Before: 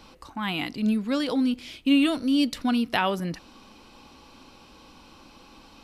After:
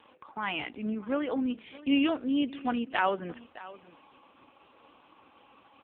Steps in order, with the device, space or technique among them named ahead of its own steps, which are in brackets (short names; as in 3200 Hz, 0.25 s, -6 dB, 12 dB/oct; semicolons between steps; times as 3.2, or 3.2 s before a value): 0.75–1.49 LPF 2800 Hz 12 dB/oct; satellite phone (BPF 360–3000 Hz; echo 0.618 s -18 dB; AMR-NB 4.75 kbps 8000 Hz)